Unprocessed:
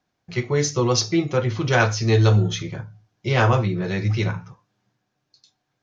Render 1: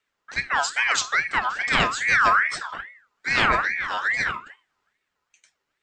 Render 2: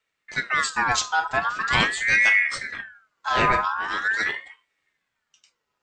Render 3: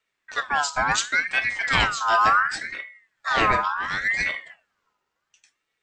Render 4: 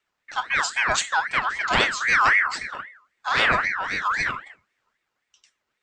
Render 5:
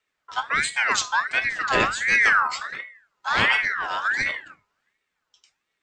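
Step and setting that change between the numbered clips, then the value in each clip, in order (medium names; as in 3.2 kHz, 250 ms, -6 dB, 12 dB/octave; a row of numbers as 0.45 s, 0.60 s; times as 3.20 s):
ring modulator with a swept carrier, at: 2.4 Hz, 0.43 Hz, 0.7 Hz, 3.8 Hz, 1.4 Hz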